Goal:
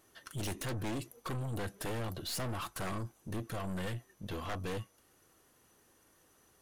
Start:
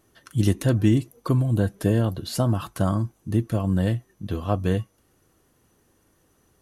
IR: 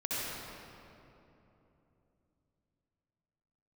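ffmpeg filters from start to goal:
-af "lowshelf=f=370:g=-10.5,aeval=exprs='0.075*(abs(mod(val(0)/0.075+3,4)-2)-1)':c=same,aeval=exprs='(tanh(63.1*val(0)+0.3)-tanh(0.3))/63.1':c=same,volume=1dB"

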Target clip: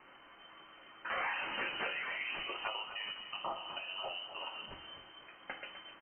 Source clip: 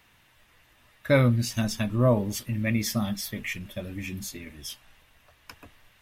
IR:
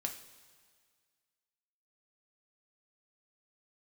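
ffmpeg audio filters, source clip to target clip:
-filter_complex "[0:a]equalizer=f=170:t=o:w=0.87:g=-9,bandreject=f=90.49:t=h:w=4,bandreject=f=180.98:t=h:w=4,bandreject=f=271.47:t=h:w=4,bandreject=f=361.96:t=h:w=4,bandreject=f=452.45:t=h:w=4,bandreject=f=542.94:t=h:w=4,bandreject=f=633.43:t=h:w=4,bandreject=f=723.92:t=h:w=4,bandreject=f=814.41:t=h:w=4,bandreject=f=904.9:t=h:w=4,bandreject=f=995.39:t=h:w=4,bandreject=f=1.08588k:t=h:w=4,bandreject=f=1.17637k:t=h:w=4,bandreject=f=1.26686k:t=h:w=4,bandreject=f=1.35735k:t=h:w=4,bandreject=f=1.44784k:t=h:w=4,bandreject=f=1.53833k:t=h:w=4,bandreject=f=1.62882k:t=h:w=4,bandreject=f=1.71931k:t=h:w=4,bandreject=f=1.8098k:t=h:w=4,bandreject=f=1.90029k:t=h:w=4,bandreject=f=1.99078k:t=h:w=4,bandreject=f=2.08127k:t=h:w=4,bandreject=f=2.17176k:t=h:w=4,bandreject=f=2.26225k:t=h:w=4,bandreject=f=2.35274k:t=h:w=4[a];[1:a]atrim=start_sample=2205,asetrate=79380,aresample=44100[b];[a][b]afir=irnorm=-1:irlink=0,asettb=1/sr,asplit=3[c][d][e];[c]atrim=end=2.674[f];[d]atrim=start=2.67:end=4.71,asetpts=PTS-STARTPTS,afade=t=in:d=0.004:c=qsin,afade=t=out:st=2.036:d=0.004:c=qsin,acompressor=threshold=-47dB:ratio=6[g];[e]atrim=start=4.706[h];[f][g]acrossfade=d=0.004:c1=hsin:c2=qsin[i];[i][h]acrossfade=d=0.004:c1=qsin:c2=hsin,afftfilt=real='re*lt(hypot(re,im),0.0355)':imag='im*lt(hypot(re,im),0.0355)':win_size=1024:overlap=0.75,aeval=exprs='0.0126*(abs(mod(val(0)/0.0126+3,4)-2)-1)':c=same,lowpass=f=2.6k:t=q:w=0.5098,lowpass=f=2.6k:t=q:w=0.6013,lowpass=f=2.6k:t=q:w=0.9,lowpass=f=2.6k:t=q:w=2.563,afreqshift=-3100,aemphasis=mode=reproduction:type=75kf,asplit=4[j][k][l][m];[k]adelay=253,afreqshift=39,volume=-11dB[n];[l]adelay=506,afreqshift=78,volume=-21.2dB[o];[m]adelay=759,afreqshift=117,volume=-31.3dB[p];[j][n][o][p]amix=inputs=4:normalize=0,volume=12.5dB"

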